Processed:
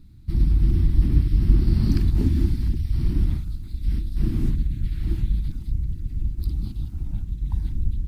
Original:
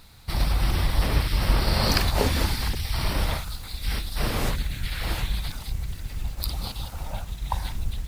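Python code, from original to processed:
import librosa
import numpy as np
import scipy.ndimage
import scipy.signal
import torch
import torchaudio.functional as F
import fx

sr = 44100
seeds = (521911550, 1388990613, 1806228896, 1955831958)

y = fx.curve_eq(x, sr, hz=(340.0, 490.0, 1700.0), db=(0, -30, -23))
y = y * librosa.db_to_amplitude(5.0)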